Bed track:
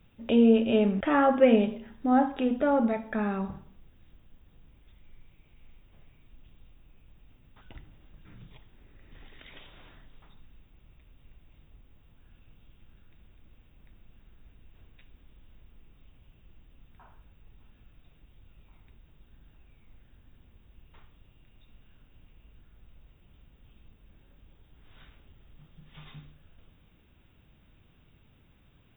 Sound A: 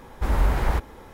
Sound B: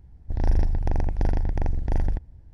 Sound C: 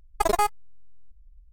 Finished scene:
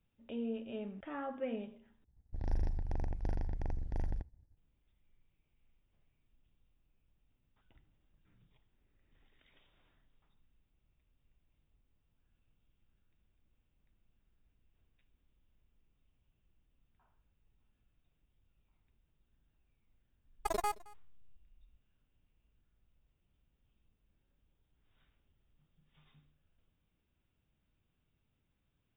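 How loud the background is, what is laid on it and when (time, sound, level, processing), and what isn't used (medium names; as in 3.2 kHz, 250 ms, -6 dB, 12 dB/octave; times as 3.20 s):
bed track -19 dB
2.04 s: replace with B -13 dB + expander -41 dBFS
20.25 s: add C -12.5 dB + delay 219 ms -23 dB
not used: A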